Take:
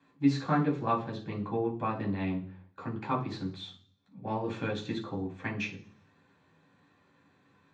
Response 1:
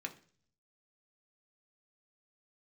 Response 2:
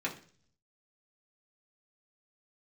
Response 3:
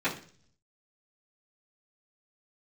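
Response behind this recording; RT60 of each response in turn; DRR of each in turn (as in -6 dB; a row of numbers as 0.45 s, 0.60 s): 3; 0.45 s, 0.45 s, 0.45 s; 3.0 dB, -4.0 dB, -13.5 dB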